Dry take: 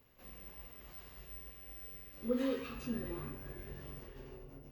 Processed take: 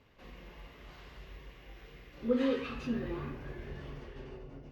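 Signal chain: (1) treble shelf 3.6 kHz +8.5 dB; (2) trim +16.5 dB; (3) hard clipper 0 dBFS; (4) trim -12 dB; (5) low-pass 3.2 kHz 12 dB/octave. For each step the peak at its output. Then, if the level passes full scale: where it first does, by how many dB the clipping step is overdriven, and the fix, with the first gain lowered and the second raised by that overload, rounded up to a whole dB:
-21.5 dBFS, -5.0 dBFS, -5.0 dBFS, -17.0 dBFS, -17.0 dBFS; nothing clips

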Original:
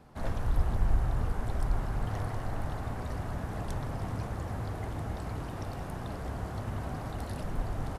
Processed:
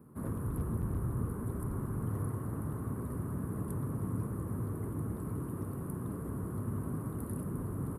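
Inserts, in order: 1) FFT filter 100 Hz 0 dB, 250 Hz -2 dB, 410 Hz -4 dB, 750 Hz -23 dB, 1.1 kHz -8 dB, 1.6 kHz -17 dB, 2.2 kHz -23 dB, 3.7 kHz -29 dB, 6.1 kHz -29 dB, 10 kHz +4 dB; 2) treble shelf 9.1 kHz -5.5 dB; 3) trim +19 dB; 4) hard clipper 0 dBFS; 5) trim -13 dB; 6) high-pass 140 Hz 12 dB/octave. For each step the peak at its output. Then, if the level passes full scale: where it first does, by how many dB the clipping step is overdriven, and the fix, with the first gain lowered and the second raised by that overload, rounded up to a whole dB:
-15.0 dBFS, -15.0 dBFS, +4.0 dBFS, 0.0 dBFS, -13.0 dBFS, -23.0 dBFS; step 3, 4.0 dB; step 3 +15 dB, step 5 -9 dB

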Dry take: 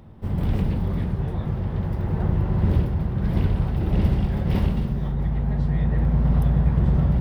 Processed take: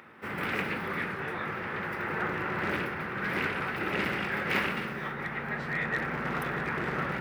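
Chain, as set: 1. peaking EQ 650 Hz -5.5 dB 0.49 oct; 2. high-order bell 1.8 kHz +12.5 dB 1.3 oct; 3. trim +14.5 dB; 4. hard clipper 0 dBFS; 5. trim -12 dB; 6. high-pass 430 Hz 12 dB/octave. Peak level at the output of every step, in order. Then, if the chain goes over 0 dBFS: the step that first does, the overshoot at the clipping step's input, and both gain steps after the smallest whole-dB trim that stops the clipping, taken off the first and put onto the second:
-8.0 dBFS, -8.0 dBFS, +6.5 dBFS, 0.0 dBFS, -12.0 dBFS, -15.0 dBFS; step 3, 6.5 dB; step 3 +7.5 dB, step 5 -5 dB

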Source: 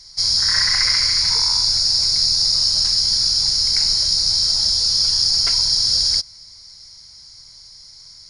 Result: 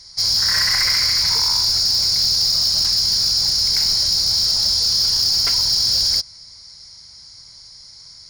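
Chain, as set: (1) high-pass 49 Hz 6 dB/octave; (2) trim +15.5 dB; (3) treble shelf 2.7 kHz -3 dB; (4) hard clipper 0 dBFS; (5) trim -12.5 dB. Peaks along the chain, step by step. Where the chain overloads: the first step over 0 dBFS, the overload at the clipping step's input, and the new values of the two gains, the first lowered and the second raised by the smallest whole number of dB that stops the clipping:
-5.0 dBFS, +10.5 dBFS, +9.0 dBFS, 0.0 dBFS, -12.5 dBFS; step 2, 9.0 dB; step 2 +6.5 dB, step 5 -3.5 dB

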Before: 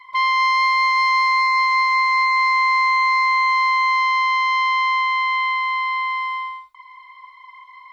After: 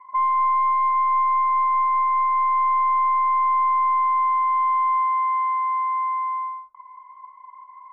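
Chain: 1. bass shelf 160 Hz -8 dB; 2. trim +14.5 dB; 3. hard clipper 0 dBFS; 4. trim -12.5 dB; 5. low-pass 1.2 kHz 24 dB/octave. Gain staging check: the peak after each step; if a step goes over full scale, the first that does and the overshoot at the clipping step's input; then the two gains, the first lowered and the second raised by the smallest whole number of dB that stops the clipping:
-10.0 dBFS, +4.5 dBFS, 0.0 dBFS, -12.5 dBFS, -15.5 dBFS; step 2, 4.5 dB; step 2 +9.5 dB, step 4 -7.5 dB

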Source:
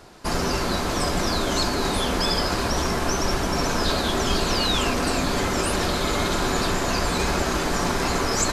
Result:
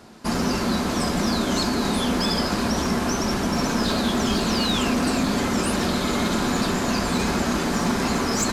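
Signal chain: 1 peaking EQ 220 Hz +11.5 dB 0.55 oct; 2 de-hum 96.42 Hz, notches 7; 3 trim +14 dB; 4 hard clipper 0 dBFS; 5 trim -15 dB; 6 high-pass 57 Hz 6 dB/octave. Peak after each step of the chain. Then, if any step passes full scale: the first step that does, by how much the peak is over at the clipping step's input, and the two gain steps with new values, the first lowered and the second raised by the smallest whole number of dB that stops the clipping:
-7.5 dBFS, -7.5 dBFS, +6.5 dBFS, 0.0 dBFS, -15.0 dBFS, -11.5 dBFS; step 3, 6.5 dB; step 3 +7 dB, step 5 -8 dB

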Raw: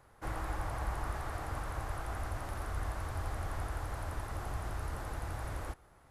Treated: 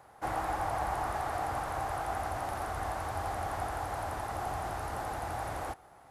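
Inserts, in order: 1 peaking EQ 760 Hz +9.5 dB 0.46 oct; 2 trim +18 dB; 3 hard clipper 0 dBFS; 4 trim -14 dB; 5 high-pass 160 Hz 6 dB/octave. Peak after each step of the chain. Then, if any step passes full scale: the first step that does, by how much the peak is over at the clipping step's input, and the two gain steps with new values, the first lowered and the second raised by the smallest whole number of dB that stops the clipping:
-22.5 dBFS, -4.5 dBFS, -4.5 dBFS, -18.5 dBFS, -20.5 dBFS; nothing clips

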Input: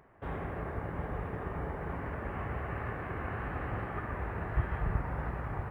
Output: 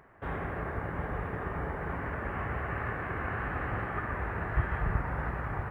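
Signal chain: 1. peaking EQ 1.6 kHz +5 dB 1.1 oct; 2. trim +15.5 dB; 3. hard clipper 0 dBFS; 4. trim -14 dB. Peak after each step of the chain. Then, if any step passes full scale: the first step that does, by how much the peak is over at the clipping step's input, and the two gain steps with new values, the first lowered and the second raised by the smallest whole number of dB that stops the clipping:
-17.5 dBFS, -2.0 dBFS, -2.0 dBFS, -16.0 dBFS; nothing clips

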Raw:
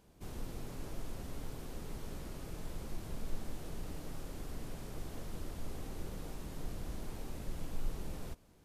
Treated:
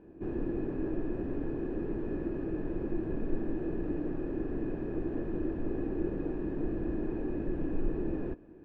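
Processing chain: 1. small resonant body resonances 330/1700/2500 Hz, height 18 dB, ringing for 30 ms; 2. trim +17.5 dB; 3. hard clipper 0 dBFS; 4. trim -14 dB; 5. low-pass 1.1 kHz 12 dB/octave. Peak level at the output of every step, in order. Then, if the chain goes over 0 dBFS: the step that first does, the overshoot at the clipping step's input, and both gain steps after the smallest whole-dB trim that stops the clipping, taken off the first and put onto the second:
-21.0 dBFS, -3.5 dBFS, -3.5 dBFS, -17.5 dBFS, -18.0 dBFS; nothing clips

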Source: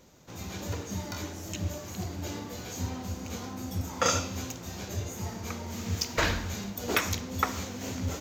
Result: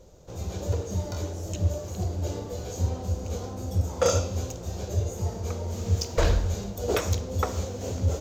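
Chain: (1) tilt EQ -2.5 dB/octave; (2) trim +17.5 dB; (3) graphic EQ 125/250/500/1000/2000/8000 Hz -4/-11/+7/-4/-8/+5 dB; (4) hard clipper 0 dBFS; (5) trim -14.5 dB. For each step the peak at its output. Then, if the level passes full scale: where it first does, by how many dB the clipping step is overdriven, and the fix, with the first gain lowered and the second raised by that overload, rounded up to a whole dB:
-10.0 dBFS, +7.5 dBFS, +6.0 dBFS, 0.0 dBFS, -14.5 dBFS; step 2, 6.0 dB; step 2 +11.5 dB, step 5 -8.5 dB

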